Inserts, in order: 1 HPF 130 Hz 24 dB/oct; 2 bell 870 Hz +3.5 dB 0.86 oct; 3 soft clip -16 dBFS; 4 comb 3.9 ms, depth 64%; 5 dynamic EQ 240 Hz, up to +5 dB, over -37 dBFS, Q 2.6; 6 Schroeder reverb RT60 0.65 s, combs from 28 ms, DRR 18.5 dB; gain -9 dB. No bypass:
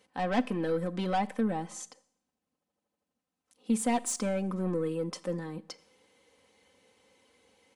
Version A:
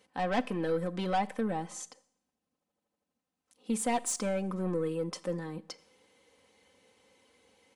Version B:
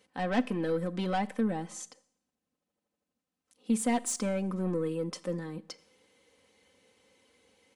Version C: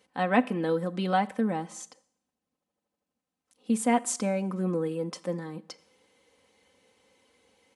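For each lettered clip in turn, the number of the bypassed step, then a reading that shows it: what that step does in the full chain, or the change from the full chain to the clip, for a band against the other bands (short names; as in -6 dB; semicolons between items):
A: 5, momentary loudness spread change -1 LU; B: 2, 1 kHz band -2.5 dB; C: 3, distortion -10 dB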